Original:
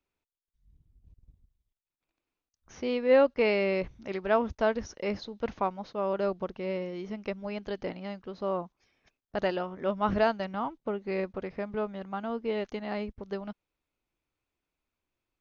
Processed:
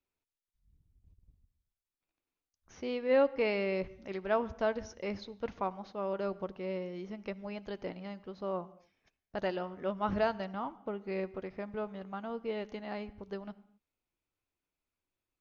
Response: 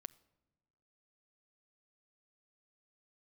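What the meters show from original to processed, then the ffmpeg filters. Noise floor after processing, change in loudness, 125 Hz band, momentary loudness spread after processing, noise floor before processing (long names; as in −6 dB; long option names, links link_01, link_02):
below −85 dBFS, −5.0 dB, −4.0 dB, 12 LU, below −85 dBFS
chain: -filter_complex "[1:a]atrim=start_sample=2205,afade=type=out:start_time=0.21:duration=0.01,atrim=end_sample=9702,asetrate=26901,aresample=44100[link_01];[0:a][link_01]afir=irnorm=-1:irlink=0,volume=-2dB"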